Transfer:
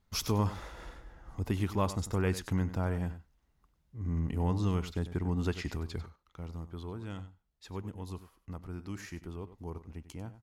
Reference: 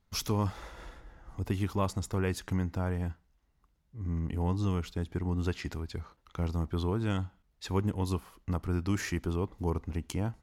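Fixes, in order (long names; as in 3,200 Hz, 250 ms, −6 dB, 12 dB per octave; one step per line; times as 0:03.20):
echo removal 96 ms −13.5 dB
level correction +10.5 dB, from 0:06.06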